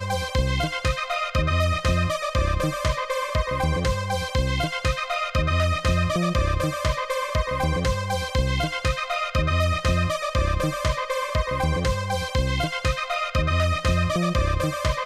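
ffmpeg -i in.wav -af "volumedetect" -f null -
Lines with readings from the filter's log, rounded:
mean_volume: -23.3 dB
max_volume: -9.4 dB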